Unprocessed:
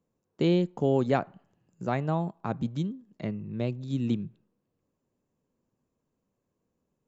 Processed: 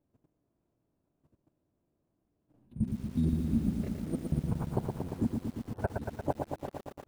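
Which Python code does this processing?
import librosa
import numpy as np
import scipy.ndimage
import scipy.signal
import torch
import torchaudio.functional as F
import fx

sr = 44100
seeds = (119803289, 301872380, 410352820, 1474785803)

y = np.flip(x).copy()
y = (np.kron(y[::3], np.eye(3)[0]) * 3)[:len(y)]
y = fx.over_compress(y, sr, threshold_db=-32.0, ratio=-0.5)
y = fx.transient(y, sr, attack_db=6, sustain_db=-9)
y = fx.pitch_keep_formants(y, sr, semitones=-8.5)
y = fx.level_steps(y, sr, step_db=13)
y = fx.lowpass(y, sr, hz=1100.0, slope=6)
y = fx.echo_crushed(y, sr, ms=116, feedback_pct=80, bits=9, wet_db=-4.5)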